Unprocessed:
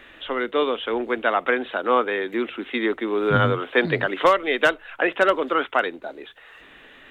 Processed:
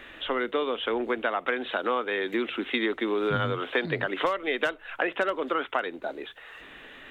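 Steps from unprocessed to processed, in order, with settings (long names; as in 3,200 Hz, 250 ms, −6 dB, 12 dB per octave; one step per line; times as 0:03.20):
0:01.45–0:03.86: dynamic equaliser 4,800 Hz, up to +6 dB, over −43 dBFS, Q 0.8
downward compressor 5 to 1, threshold −25 dBFS, peak gain reduction 12.5 dB
level +1 dB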